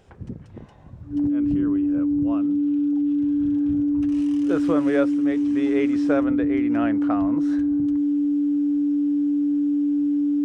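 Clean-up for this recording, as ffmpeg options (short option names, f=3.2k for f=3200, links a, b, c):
-af "bandreject=f=290:w=30"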